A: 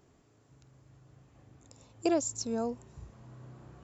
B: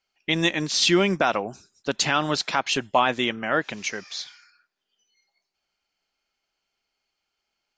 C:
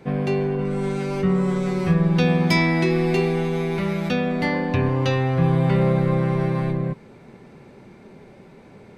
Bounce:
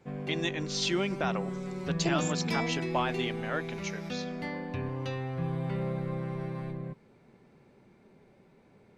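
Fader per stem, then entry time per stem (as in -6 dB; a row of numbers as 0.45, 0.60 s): -4.0, -10.5, -14.0 dB; 0.00, 0.00, 0.00 s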